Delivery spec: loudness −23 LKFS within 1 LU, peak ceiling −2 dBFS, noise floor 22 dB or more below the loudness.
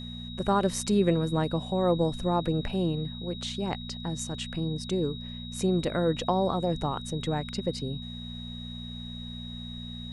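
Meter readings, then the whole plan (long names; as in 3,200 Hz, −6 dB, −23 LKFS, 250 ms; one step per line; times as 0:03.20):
mains hum 60 Hz; hum harmonics up to 240 Hz; level of the hum −39 dBFS; interfering tone 3,800 Hz; level of the tone −42 dBFS; integrated loudness −30.0 LKFS; sample peak −11.5 dBFS; target loudness −23.0 LKFS
→ hum removal 60 Hz, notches 4
notch filter 3,800 Hz, Q 30
level +7 dB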